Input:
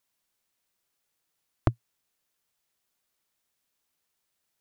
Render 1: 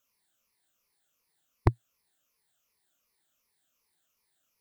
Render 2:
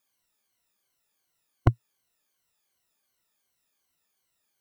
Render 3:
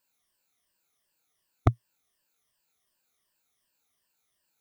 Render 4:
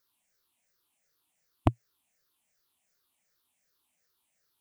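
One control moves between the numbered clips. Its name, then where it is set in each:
moving spectral ripple, ripples per octave: 0.86, 2, 1.3, 0.57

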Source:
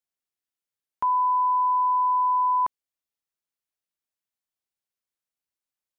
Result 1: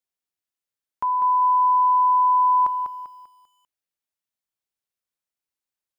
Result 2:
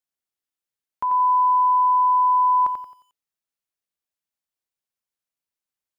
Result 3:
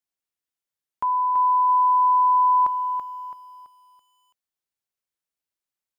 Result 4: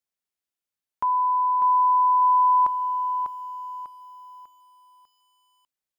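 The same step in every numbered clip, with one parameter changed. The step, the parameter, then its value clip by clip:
lo-fi delay, time: 197, 89, 332, 597 ms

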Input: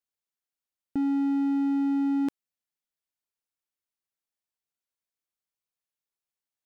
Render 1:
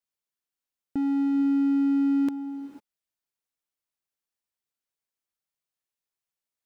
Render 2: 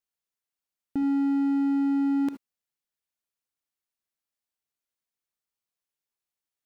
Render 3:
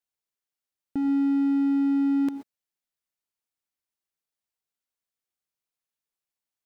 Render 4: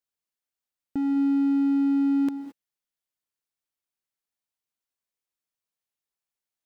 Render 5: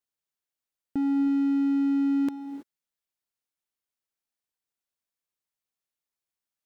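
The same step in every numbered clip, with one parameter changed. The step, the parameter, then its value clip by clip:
non-linear reverb, gate: 520, 90, 150, 240, 350 ms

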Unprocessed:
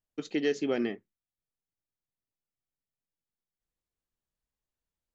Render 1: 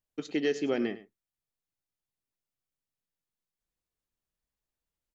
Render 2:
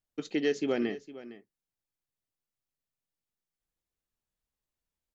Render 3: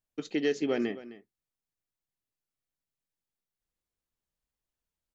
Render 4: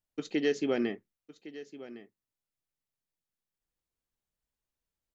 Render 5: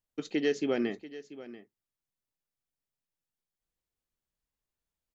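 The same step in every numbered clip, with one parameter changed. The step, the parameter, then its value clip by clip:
echo, time: 0.103, 0.459, 0.26, 1.109, 0.687 s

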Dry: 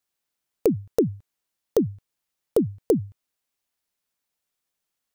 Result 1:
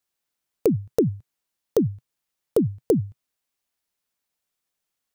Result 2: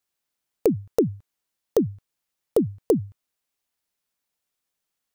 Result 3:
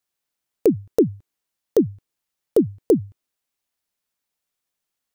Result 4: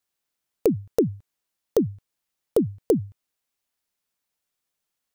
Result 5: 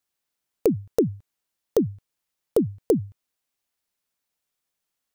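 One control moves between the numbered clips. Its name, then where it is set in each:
dynamic EQ, frequency: 130, 1200, 330, 3100, 7900 Hz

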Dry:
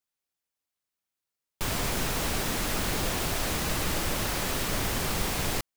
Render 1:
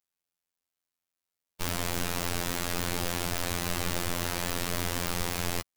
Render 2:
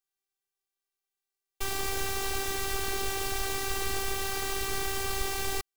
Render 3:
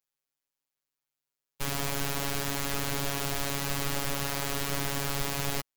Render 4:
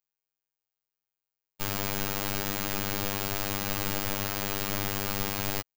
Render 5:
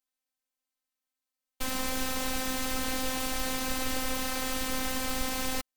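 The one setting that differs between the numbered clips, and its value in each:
robotiser, frequency: 87, 390, 140, 100, 260 Hz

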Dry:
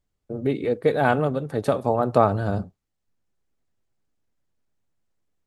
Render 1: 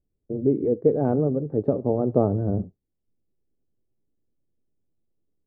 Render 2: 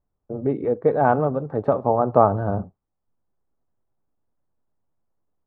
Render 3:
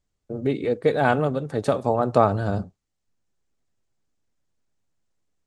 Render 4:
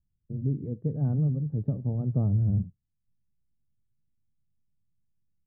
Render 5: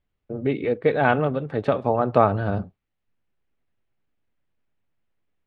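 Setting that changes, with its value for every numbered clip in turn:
synth low-pass, frequency: 390, 1000, 7600, 150, 2700 Hz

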